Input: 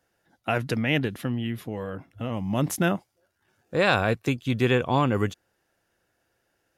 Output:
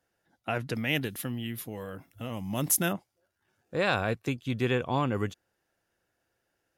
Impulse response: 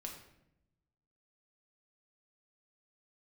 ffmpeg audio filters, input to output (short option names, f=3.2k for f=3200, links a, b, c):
-filter_complex "[0:a]asettb=1/sr,asplit=3[a][b][c];[a]atrim=end=0.754[d];[b]atrim=start=0.75:end=2.93,asetpts=PTS-STARTPTS,afade=t=in:d=0.004:c=qsin,afade=t=out:st=2.176:d=0.004:c=qsin,aemphasis=mode=production:type=75fm[e];[c]atrim=start=2.926[f];[d][e]acrossfade=d=0.004:c1=hsin:c2=qsin[g];[g][f]acrossfade=d=0.004:c1=qsin:c2=hsin,volume=-5.5dB"